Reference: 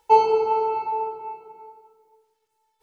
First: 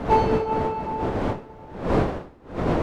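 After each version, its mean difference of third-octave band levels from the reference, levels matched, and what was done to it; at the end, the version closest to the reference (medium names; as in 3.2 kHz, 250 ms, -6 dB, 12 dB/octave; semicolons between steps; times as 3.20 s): 12.0 dB: wind noise 540 Hz -22 dBFS; in parallel at -3 dB: hard clipper -10 dBFS, distortion -16 dB; on the sum: trim -8.5 dB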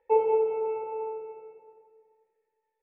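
3.5 dB: cascade formant filter e; on a send: feedback delay 184 ms, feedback 46%, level -8.5 dB; on the sum: trim +7.5 dB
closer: second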